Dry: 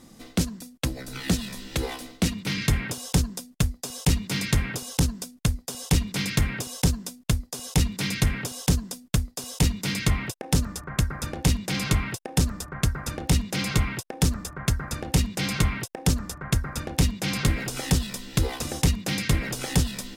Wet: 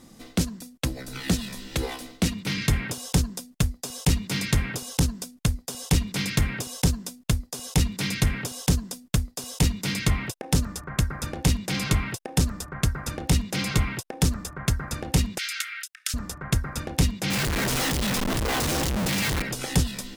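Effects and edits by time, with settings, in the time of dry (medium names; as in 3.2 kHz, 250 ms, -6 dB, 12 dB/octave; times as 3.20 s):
15.38–16.14 s: steep high-pass 1.3 kHz 96 dB/octave
17.30–19.42 s: Schmitt trigger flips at -42 dBFS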